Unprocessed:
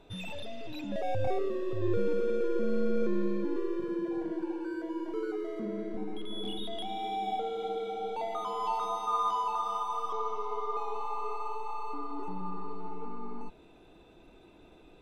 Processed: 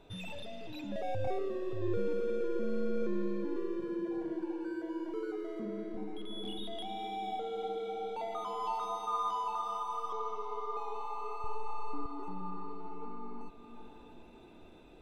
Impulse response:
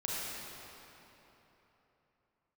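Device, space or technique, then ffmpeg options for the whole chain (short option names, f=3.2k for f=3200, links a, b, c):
ducked reverb: -filter_complex "[0:a]asettb=1/sr,asplit=3[a][b][c];[a]atrim=end=11.444[d];[b]atrim=start=11.44:end=12.06,asetpts=PTS-STARTPTS,afade=t=in:d=0.004:c=qsin,afade=t=out:st=0.616:d=0.004:c=qsin,lowshelf=f=260:g=9.5[e];[c]atrim=start=12.056[f];[d][e]acrossfade=d=0.004:c1=hsin:c2=qsin[g];[g][f]acrossfade=d=0.004:c1=qsin:c2=hsin,asplit=3[h][i][j];[1:a]atrim=start_sample=2205[k];[i][k]afir=irnorm=-1:irlink=0[l];[j]apad=whole_len=662057[m];[l][m]sidechaincompress=threshold=-43dB:ratio=8:attack=16:release=500,volume=-5.5dB[n];[h][n]amix=inputs=2:normalize=0,volume=-4.5dB"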